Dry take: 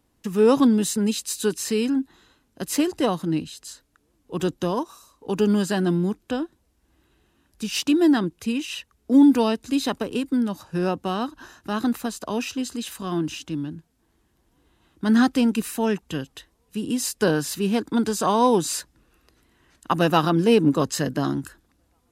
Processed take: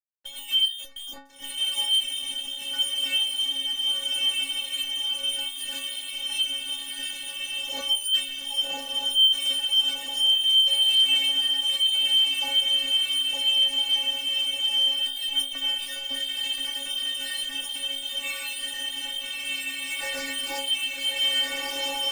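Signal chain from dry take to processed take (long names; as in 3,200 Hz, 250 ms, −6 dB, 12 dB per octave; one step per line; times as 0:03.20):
0:19.95–0:20.69: ceiling on every frequency bin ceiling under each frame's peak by 21 dB
feedback delay with all-pass diffusion 1,352 ms, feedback 58%, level −3.5 dB
voice inversion scrambler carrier 3,400 Hz
fuzz pedal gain 33 dB, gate −41 dBFS
stiff-string resonator 270 Hz, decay 0.46 s, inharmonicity 0.008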